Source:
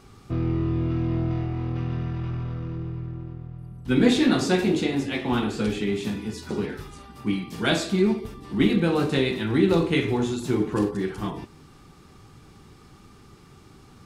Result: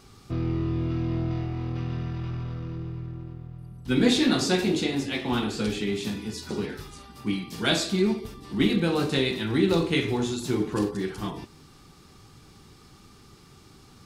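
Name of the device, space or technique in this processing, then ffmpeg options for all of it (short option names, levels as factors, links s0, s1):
presence and air boost: -af "equalizer=f=4600:t=o:w=1.2:g=5.5,highshelf=f=9100:g=7,volume=0.75"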